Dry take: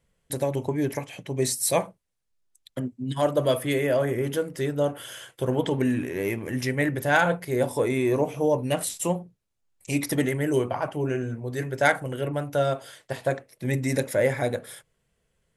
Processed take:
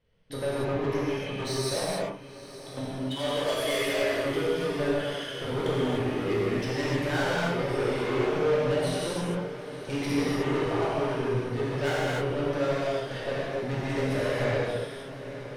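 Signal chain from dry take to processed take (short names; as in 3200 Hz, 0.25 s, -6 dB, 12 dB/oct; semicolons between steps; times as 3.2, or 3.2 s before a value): 2.85–4.24 tilt +4 dB/oct; in parallel at -2 dB: limiter -16 dBFS, peak gain reduction 9 dB; on the sum: polynomial smoothing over 15 samples; small resonant body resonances 420/3000 Hz, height 7 dB; soft clip -23 dBFS, distortion -6 dB; on a send: diffused feedback echo 0.972 s, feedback 74%, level -14.5 dB; on the sum: non-linear reverb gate 0.33 s flat, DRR -7.5 dB; gain -8.5 dB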